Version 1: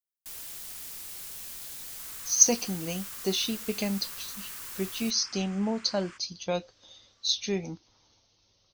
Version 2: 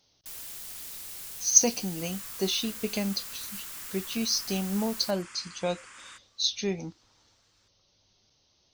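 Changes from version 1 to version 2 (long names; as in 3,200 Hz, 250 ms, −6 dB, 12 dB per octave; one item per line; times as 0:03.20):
speech: entry −0.85 s
second sound: remove high-frequency loss of the air 77 metres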